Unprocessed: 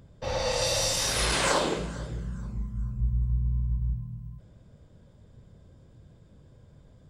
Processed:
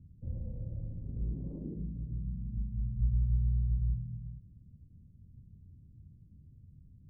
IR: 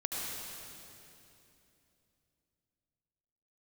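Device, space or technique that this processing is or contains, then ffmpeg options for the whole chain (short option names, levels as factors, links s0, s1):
the neighbour's flat through the wall: -af "lowpass=f=250:w=0.5412,lowpass=f=250:w=1.3066,equalizer=f=83:t=o:w=0.43:g=5.5,volume=0.708"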